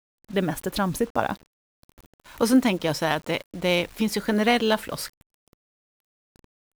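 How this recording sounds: a quantiser's noise floor 8-bit, dither none; IMA ADPCM

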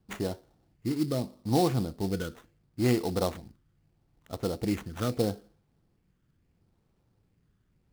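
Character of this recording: phasing stages 12, 0.76 Hz, lowest notch 770–4600 Hz; aliases and images of a low sample rate 4800 Hz, jitter 20%

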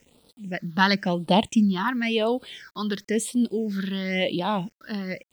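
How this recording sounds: a quantiser's noise floor 10-bit, dither none; phasing stages 6, 0.96 Hz, lowest notch 610–1900 Hz

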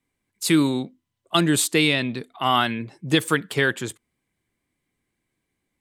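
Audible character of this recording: noise floor -80 dBFS; spectral tilt -4.0 dB/oct

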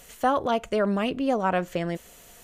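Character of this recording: noise floor -51 dBFS; spectral tilt -4.5 dB/oct

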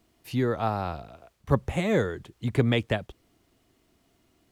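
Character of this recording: noise floor -68 dBFS; spectral tilt -6.0 dB/oct

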